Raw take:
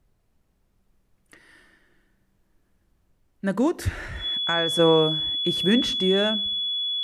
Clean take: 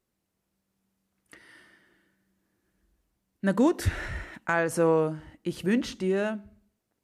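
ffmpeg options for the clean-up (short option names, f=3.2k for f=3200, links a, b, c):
-af "bandreject=f=3.4k:w=30,agate=range=-21dB:threshold=-60dB,asetnsamples=n=441:p=0,asendcmd='4.79 volume volume -4.5dB',volume=0dB"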